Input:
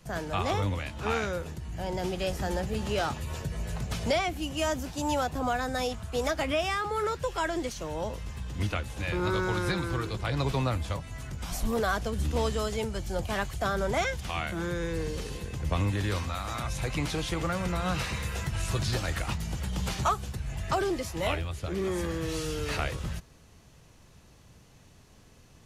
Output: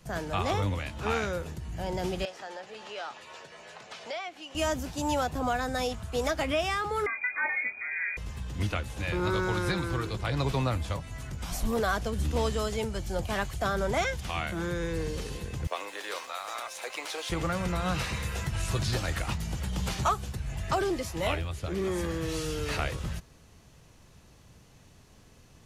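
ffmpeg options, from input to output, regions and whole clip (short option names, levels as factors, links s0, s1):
-filter_complex "[0:a]asettb=1/sr,asplit=3[s0][s1][s2];[s0]atrim=end=2.254[s3];[s1]atrim=start=2.25:end=4.55,asetpts=PTS-STARTPTS,afade=t=in:d=0.004:c=qsin,afade=t=out:st=2.296:d=0.004:c=qsin,highpass=600,lowpass=5000,acompressor=threshold=0.00562:ratio=1.5:attack=3.2:release=140:knee=1:detection=peak[s4];[s2]atrim=start=4.546[s5];[s3][s4]acrossfade=d=0.004:c1=hsin:c2=qsin[s6];[s6][s5]acrossfade=d=0.004:c1=qsin:c2=hsin,asettb=1/sr,asplit=3[s7][s8][s9];[s7]atrim=end=7.064[s10];[s8]atrim=start=7.06:end=8.17,asetpts=PTS-STARTPTS,afade=t=in:d=0.004:c=qsin,afade=t=out:st=1.106:d=0.004:c=qsin,equalizer=f=1400:w=4.8:g=-7,asplit=2[s11][s12];[s12]adelay=28,volume=0.376[s13];[s11][s13]amix=inputs=2:normalize=0,atrim=end_sample=48951,lowpass=f=2100:t=q:w=0.5098,lowpass=f=2100:t=q:w=0.6013,lowpass=f=2100:t=q:w=0.9,lowpass=f=2100:t=q:w=2.563,afreqshift=-2500[s14];[s9]atrim=start=8.166[s15];[s10][s14]acrossfade=d=0.004:c1=hsin:c2=qsin[s16];[s16][s15]acrossfade=d=0.004:c1=qsin:c2=hsin,asettb=1/sr,asplit=3[s17][s18][s19];[s17]atrim=end=15.674[s20];[s18]atrim=start=15.67:end=17.3,asetpts=PTS-STARTPTS,afade=t=in:d=0.004:c=qsin,afade=t=out:st=1.626:d=0.004:c=qsin,highpass=f=450:w=0.5412,highpass=f=450:w=1.3066,aeval=exprs='sgn(val(0))*max(abs(val(0))-0.00178,0)':c=same[s21];[s19]atrim=start=17.296[s22];[s20][s21]acrossfade=d=0.004:c1=hsin:c2=qsin[s23];[s23][s22]acrossfade=d=0.004:c1=qsin:c2=hsin"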